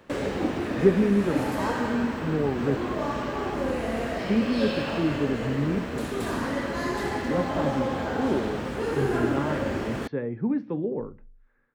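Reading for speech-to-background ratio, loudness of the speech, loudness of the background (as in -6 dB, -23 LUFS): 1.0 dB, -28.5 LUFS, -29.5 LUFS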